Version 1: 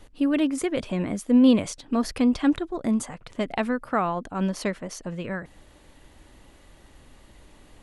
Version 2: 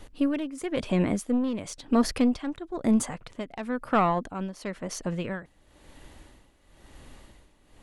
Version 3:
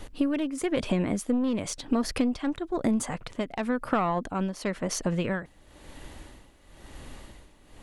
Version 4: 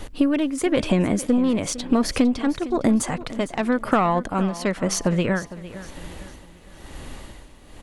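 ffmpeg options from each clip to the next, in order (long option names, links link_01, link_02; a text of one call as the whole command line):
ffmpeg -i in.wav -af "aeval=exprs='(tanh(5.62*val(0)+0.35)-tanh(0.35))/5.62':channel_layout=same,tremolo=f=0.99:d=0.8,volume=4dB" out.wav
ffmpeg -i in.wav -af "acompressor=threshold=-27dB:ratio=6,volume=5dB" out.wav
ffmpeg -i in.wav -af "aecho=1:1:456|912|1368|1824:0.158|0.0634|0.0254|0.0101,volume=6.5dB" out.wav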